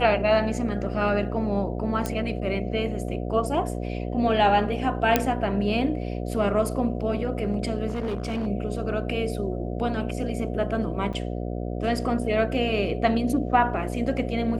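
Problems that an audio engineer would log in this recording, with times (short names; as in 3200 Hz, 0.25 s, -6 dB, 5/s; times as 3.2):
buzz 60 Hz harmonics 12 -30 dBFS
2.06 pop -13 dBFS
5.16 pop -4 dBFS
7.88–8.48 clipped -24 dBFS
11.13–11.14 gap 5.8 ms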